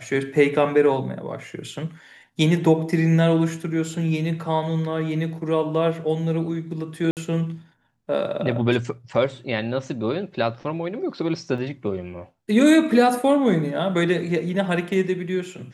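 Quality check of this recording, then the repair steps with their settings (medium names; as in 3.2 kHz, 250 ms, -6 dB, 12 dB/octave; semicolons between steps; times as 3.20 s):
7.11–7.17 s: dropout 58 ms
11.58 s: dropout 2.4 ms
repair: interpolate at 7.11 s, 58 ms; interpolate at 11.58 s, 2.4 ms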